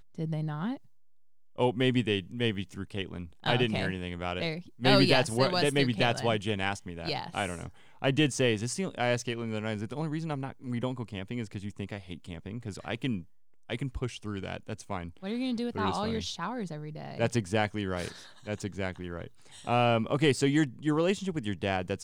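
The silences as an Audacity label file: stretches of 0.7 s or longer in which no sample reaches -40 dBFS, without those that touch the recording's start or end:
0.770000	1.580000	silence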